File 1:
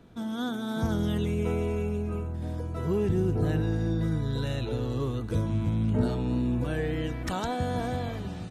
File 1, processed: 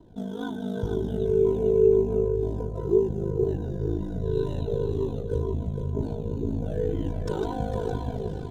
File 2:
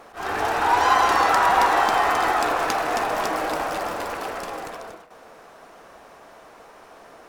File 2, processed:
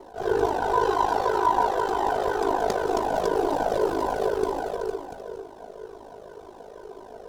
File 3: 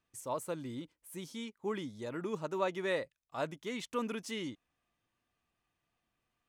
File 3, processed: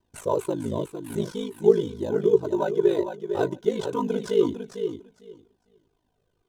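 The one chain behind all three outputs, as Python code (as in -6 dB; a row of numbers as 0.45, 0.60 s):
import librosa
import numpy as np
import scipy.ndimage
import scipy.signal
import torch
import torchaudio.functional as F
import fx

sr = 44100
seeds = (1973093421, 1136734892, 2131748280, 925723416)

p1 = fx.band_shelf(x, sr, hz=1600.0, db=-14.0, octaves=1.7)
p2 = fx.sample_hold(p1, sr, seeds[0], rate_hz=6700.0, jitter_pct=0)
p3 = p1 + (p2 * 10.0 ** (-9.5 / 20.0))
p4 = fx.high_shelf(p3, sr, hz=4500.0, db=-8.5)
p5 = fx.rider(p4, sr, range_db=4, speed_s=0.5)
p6 = fx.small_body(p5, sr, hz=(410.0, 980.0, 1500.0), ring_ms=85, db=16)
p7 = p6 + fx.echo_feedback(p6, sr, ms=453, feedback_pct=17, wet_db=-7.5, dry=0)
p8 = p7 * np.sin(2.0 * np.pi * 26.0 * np.arange(len(p7)) / sr)
p9 = fx.comb_cascade(p8, sr, direction='falling', hz=2.0)
y = p9 * 10.0 ** (-26 / 20.0) / np.sqrt(np.mean(np.square(p9)))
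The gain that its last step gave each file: +2.0, +3.5, +15.5 dB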